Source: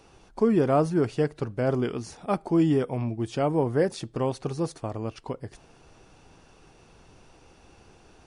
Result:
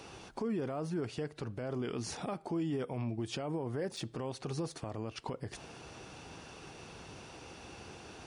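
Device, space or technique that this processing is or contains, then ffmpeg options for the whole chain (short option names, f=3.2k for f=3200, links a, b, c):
broadcast voice chain: -af "highpass=74,deesser=0.95,acompressor=threshold=-37dB:ratio=4,equalizer=f=3.3k:t=o:w=2:g=3.5,alimiter=level_in=9dB:limit=-24dB:level=0:latency=1:release=33,volume=-9dB,volume=5dB"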